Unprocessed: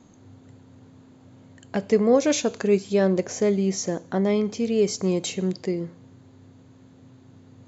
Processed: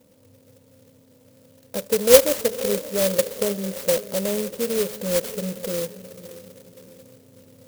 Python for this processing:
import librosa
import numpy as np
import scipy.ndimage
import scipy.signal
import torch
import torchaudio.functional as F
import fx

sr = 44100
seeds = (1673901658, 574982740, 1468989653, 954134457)

p1 = fx.peak_eq(x, sr, hz=560.0, db=4.0, octaves=0.57)
p2 = fx.rider(p1, sr, range_db=10, speed_s=0.5)
p3 = p1 + F.gain(torch.from_numpy(p2), -1.0).numpy()
p4 = fx.notch_comb(p3, sr, f0_hz=370.0)
p5 = fx.small_body(p4, sr, hz=(510.0, 3600.0), ring_ms=45, db=15)
p6 = p5 + fx.echo_diffused(p5, sr, ms=537, feedback_pct=46, wet_db=-14.5, dry=0)
p7 = fx.clock_jitter(p6, sr, seeds[0], jitter_ms=0.15)
y = F.gain(torch.from_numpy(p7), -12.0).numpy()